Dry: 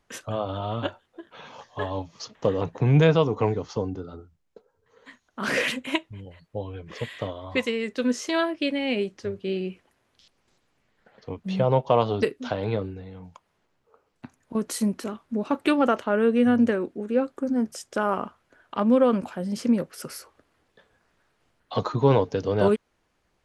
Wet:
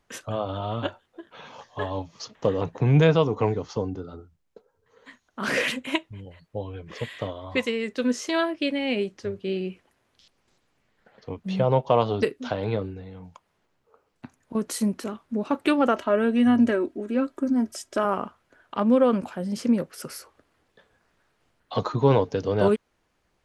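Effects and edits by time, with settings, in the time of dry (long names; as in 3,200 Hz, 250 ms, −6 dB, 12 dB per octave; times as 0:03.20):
0:15.96–0:18.05: comb filter 3.1 ms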